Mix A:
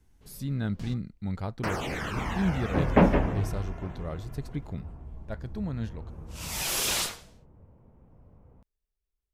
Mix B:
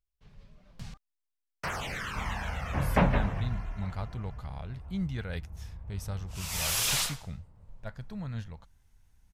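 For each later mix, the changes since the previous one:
speech: entry +2.55 s; master: add bell 330 Hz -12.5 dB 1.4 oct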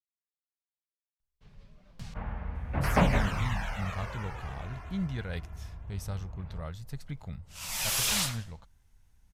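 first sound: entry +1.20 s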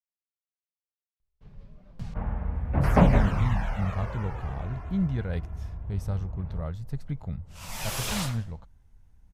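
master: add tilt shelf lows +6.5 dB, about 1400 Hz

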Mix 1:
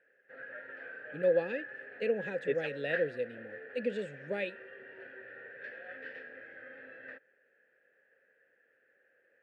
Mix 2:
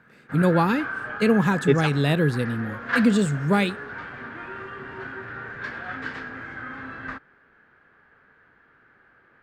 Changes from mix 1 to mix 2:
speech: entry -0.80 s; master: remove vowel filter e

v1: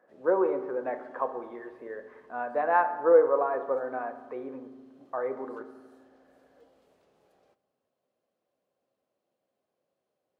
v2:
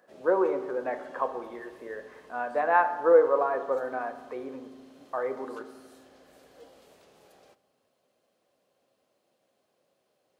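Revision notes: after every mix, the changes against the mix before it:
background +7.5 dB; master: add high shelf 2300 Hz +9 dB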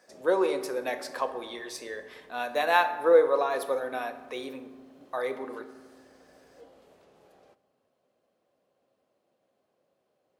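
speech: remove LPF 1500 Hz 24 dB/oct; master: add high shelf 2300 Hz -9 dB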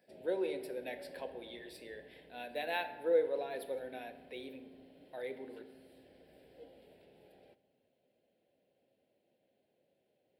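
speech -8.0 dB; master: add fixed phaser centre 2800 Hz, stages 4

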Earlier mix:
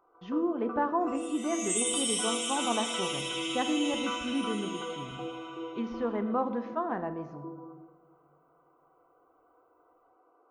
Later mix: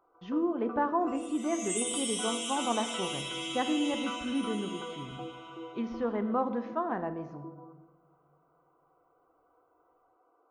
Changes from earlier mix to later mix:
first sound: send -8.5 dB; second sound: send -11.0 dB

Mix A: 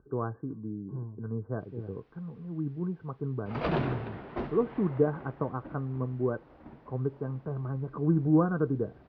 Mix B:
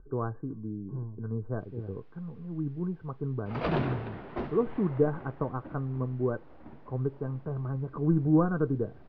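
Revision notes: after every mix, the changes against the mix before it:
speech: remove HPF 93 Hz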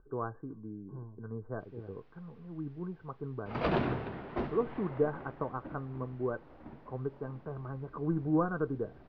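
speech: add low shelf 340 Hz -10 dB

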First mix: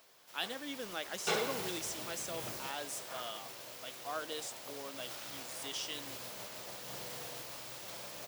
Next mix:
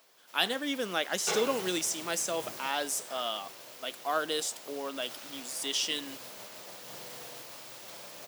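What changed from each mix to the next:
speech +10.0 dB; background: add HPF 150 Hz 12 dB/oct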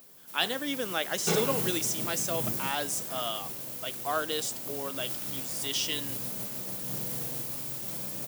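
background: remove three-band isolator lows -19 dB, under 450 Hz, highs -14 dB, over 6100 Hz

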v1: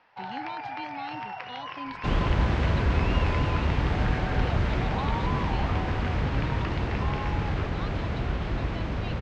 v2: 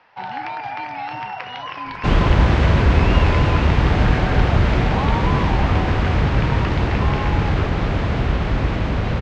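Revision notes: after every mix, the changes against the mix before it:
first sound +7.5 dB; second sound +9.5 dB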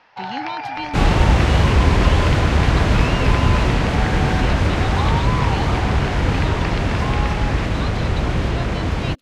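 speech +8.5 dB; second sound: entry -1.10 s; master: remove air absorption 120 m

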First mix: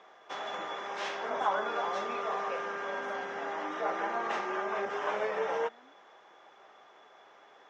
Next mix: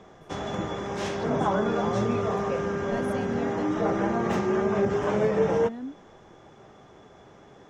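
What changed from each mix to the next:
speech +10.0 dB; master: remove BPF 780–4300 Hz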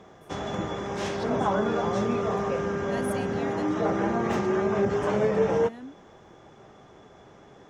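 speech: add tilt +3 dB/oct

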